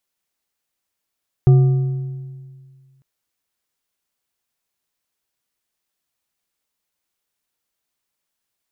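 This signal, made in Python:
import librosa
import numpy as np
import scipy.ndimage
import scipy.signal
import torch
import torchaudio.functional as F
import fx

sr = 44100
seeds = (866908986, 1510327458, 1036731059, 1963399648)

y = fx.strike_metal(sr, length_s=1.55, level_db=-6.0, body='bar', hz=134.0, decay_s=1.94, tilt_db=12, modes=4)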